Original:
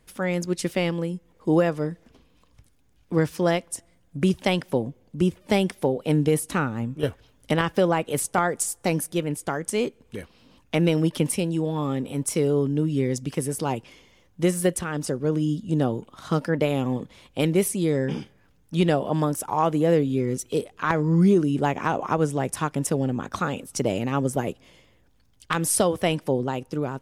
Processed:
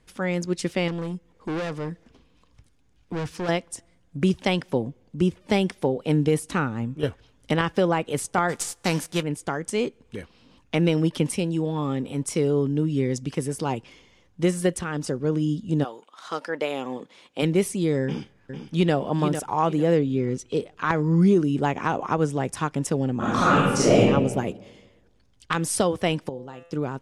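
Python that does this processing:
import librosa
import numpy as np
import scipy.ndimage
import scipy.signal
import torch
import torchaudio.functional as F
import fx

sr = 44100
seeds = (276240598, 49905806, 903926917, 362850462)

y = fx.clip_hard(x, sr, threshold_db=-26.0, at=(0.88, 3.49))
y = fx.envelope_flatten(y, sr, power=0.6, at=(8.48, 9.21), fade=0.02)
y = fx.highpass(y, sr, hz=fx.line((15.83, 840.0), (17.41, 250.0)), slope=12, at=(15.83, 17.41), fade=0.02)
y = fx.echo_throw(y, sr, start_s=18.04, length_s=0.9, ms=450, feedback_pct=30, wet_db=-8.0)
y = fx.air_absorb(y, sr, metres=52.0, at=(19.99, 20.72))
y = fx.reverb_throw(y, sr, start_s=23.16, length_s=0.84, rt60_s=1.2, drr_db=-9.5)
y = fx.comb_fb(y, sr, f0_hz=170.0, decay_s=0.72, harmonics='all', damping=0.0, mix_pct=80, at=(26.29, 26.71))
y = scipy.signal.sosfilt(scipy.signal.butter(2, 8200.0, 'lowpass', fs=sr, output='sos'), y)
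y = fx.peak_eq(y, sr, hz=610.0, db=-2.5, octaves=0.35)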